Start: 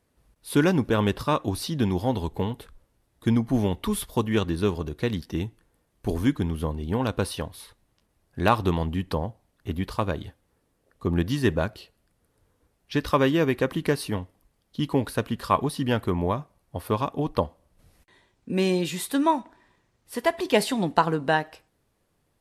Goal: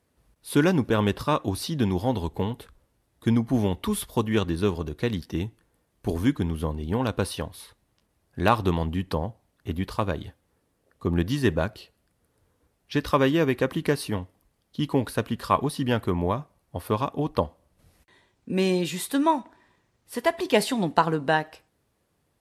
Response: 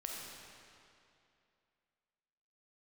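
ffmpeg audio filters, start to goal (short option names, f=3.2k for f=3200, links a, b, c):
-af "highpass=41"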